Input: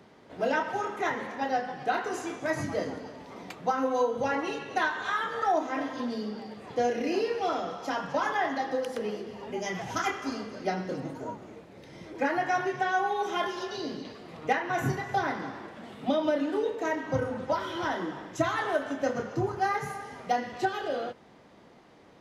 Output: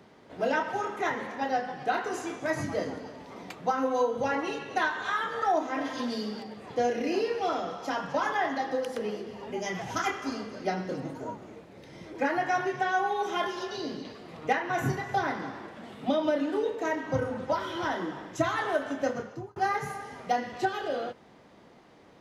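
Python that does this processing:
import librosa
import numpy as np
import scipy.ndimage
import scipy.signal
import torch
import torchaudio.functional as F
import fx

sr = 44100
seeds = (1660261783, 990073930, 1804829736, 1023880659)

y = fx.high_shelf(x, sr, hz=2300.0, db=8.5, at=(5.84, 6.42), fade=0.02)
y = fx.edit(y, sr, fx.fade_out_span(start_s=19.05, length_s=0.51), tone=tone)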